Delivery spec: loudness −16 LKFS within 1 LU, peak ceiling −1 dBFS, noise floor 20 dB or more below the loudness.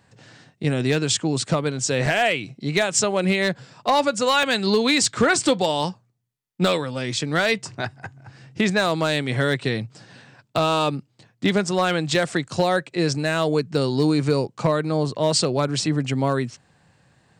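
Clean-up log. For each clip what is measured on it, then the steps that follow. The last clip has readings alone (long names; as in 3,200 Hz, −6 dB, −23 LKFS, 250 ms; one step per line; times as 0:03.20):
share of clipped samples 0.2%; peaks flattened at −10.5 dBFS; number of dropouts 2; longest dropout 2.6 ms; integrated loudness −22.0 LKFS; sample peak −10.5 dBFS; target loudness −16.0 LKFS
→ clipped peaks rebuilt −10.5 dBFS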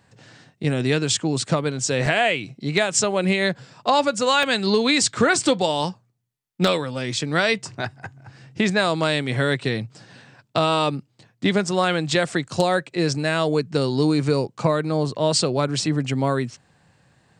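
share of clipped samples 0.0%; number of dropouts 2; longest dropout 2.6 ms
→ repair the gap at 0:02.06/0:04.43, 2.6 ms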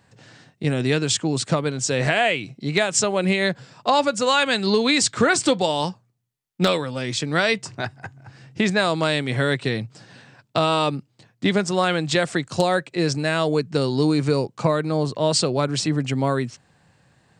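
number of dropouts 0; integrated loudness −21.5 LKFS; sample peak −1.5 dBFS; target loudness −16.0 LKFS
→ level +5.5 dB
brickwall limiter −1 dBFS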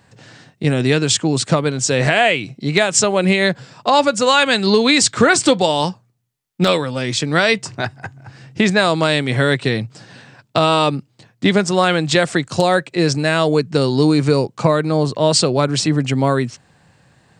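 integrated loudness −16.5 LKFS; sample peak −1.0 dBFS; background noise floor −60 dBFS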